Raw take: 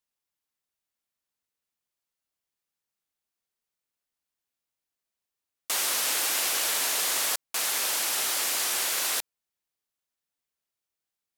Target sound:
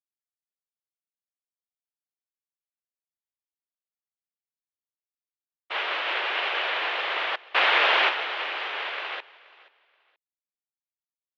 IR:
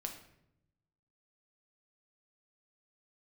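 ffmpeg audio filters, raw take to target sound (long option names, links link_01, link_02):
-filter_complex "[0:a]asplit=3[link_01][link_02][link_03];[link_01]afade=type=out:start_time=7.4:duration=0.02[link_04];[link_02]acontrast=55,afade=type=in:start_time=7.4:duration=0.02,afade=type=out:start_time=8.08:duration=0.02[link_05];[link_03]afade=type=in:start_time=8.08:duration=0.02[link_06];[link_04][link_05][link_06]amix=inputs=3:normalize=0,highpass=frequency=290:width_type=q:width=0.5412,highpass=frequency=290:width_type=q:width=1.307,lowpass=frequency=3100:width_type=q:width=0.5176,lowpass=frequency=3100:width_type=q:width=0.7071,lowpass=frequency=3100:width_type=q:width=1.932,afreqshift=53,dynaudnorm=framelen=270:gausssize=17:maxgain=8.5dB,agate=range=-33dB:threshold=-22dB:ratio=3:detection=peak,aecho=1:1:478|956:0.0891|0.0205"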